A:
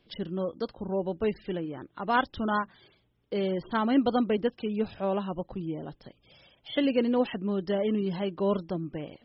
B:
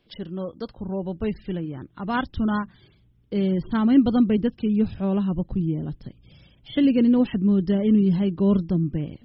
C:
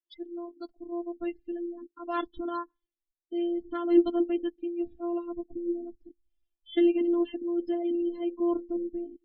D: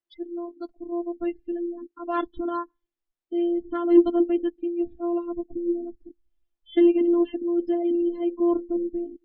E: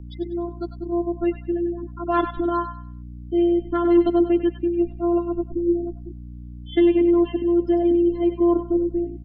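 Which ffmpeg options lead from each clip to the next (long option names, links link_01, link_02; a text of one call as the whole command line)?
ffmpeg -i in.wav -af "asubboost=boost=7:cutoff=240" out.wav
ffmpeg -i in.wav -af "afftfilt=real='hypot(re,im)*cos(PI*b)':imag='0':win_size=512:overlap=0.75,afftdn=noise_reduction=34:noise_floor=-38,lowshelf=frequency=180:width_type=q:width=1.5:gain=-10,volume=-2.5dB" out.wav
ffmpeg -i in.wav -af "lowpass=frequency=1800:poles=1,acontrast=38" out.wav
ffmpeg -i in.wav -filter_complex "[0:a]aeval=exprs='val(0)+0.00891*(sin(2*PI*60*n/s)+sin(2*PI*2*60*n/s)/2+sin(2*PI*3*60*n/s)/3+sin(2*PI*4*60*n/s)/4+sin(2*PI*5*60*n/s)/5)':channel_layout=same,acrossover=split=230|730[link_01][link_02][link_03];[link_02]alimiter=limit=-20dB:level=0:latency=1[link_04];[link_03]aecho=1:1:97|194|291|388:0.422|0.127|0.038|0.0114[link_05];[link_01][link_04][link_05]amix=inputs=3:normalize=0,volume=5.5dB" out.wav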